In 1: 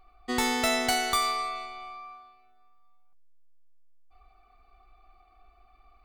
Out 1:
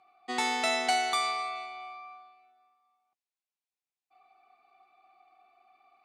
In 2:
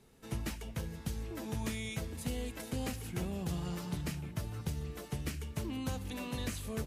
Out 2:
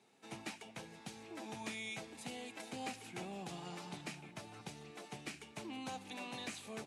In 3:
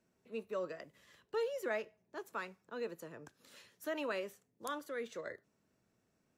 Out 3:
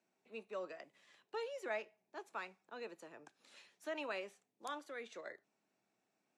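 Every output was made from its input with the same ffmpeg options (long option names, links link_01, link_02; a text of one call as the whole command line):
ffmpeg -i in.wav -af "highpass=frequency=160:width=0.5412,highpass=frequency=160:width=1.3066,equalizer=frequency=160:width_type=q:width=4:gain=-8,equalizer=frequency=240:width_type=q:width=4:gain=-4,equalizer=frequency=480:width_type=q:width=4:gain=-4,equalizer=frequency=780:width_type=q:width=4:gain=8,equalizer=frequency=2400:width_type=q:width=4:gain=6,equalizer=frequency=3800:width_type=q:width=4:gain=3,lowpass=frequency=9800:width=0.5412,lowpass=frequency=9800:width=1.3066,volume=-4.5dB" out.wav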